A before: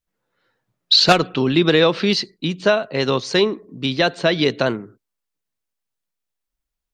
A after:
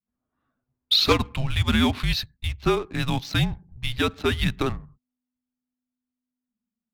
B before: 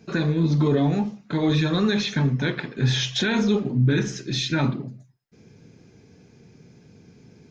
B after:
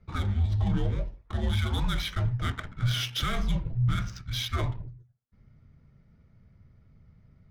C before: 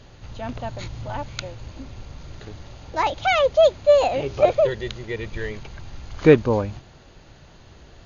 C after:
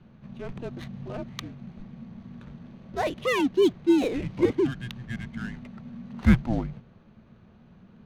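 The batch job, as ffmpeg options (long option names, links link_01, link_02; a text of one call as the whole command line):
ffmpeg -i in.wav -af "adynamicsmooth=sensitivity=7.5:basefreq=1800,afreqshift=-250,volume=-5.5dB" out.wav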